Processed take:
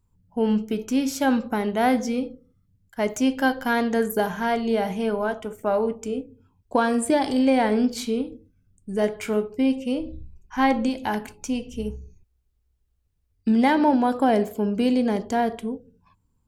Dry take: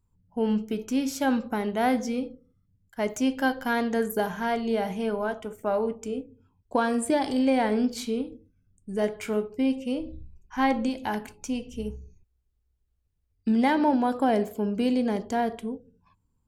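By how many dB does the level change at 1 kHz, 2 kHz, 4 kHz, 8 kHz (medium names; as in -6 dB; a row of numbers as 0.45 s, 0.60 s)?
+3.5 dB, +3.5 dB, +3.5 dB, +3.5 dB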